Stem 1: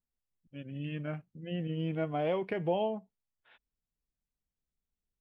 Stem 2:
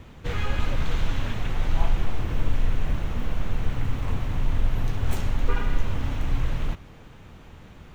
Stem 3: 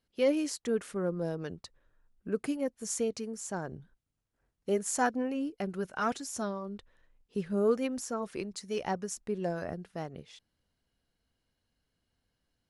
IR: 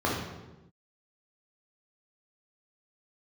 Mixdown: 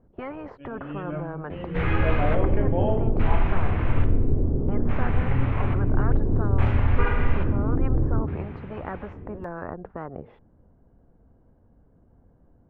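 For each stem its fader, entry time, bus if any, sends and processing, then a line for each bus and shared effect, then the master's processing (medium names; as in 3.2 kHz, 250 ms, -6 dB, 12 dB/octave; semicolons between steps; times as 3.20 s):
-2.5 dB, 0.05 s, send -11.5 dB, tone controls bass -3 dB, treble -12 dB
+1.0 dB, 1.50 s, send -16 dB, LFO low-pass square 0.59 Hz 380–2300 Hz; treble shelf 3 kHz -9.5 dB
+2.0 dB, 0.00 s, no send, Bessel low-pass 660 Hz, order 4; spectrum-flattening compressor 4:1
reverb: on, RT60 1.1 s, pre-delay 3 ms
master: none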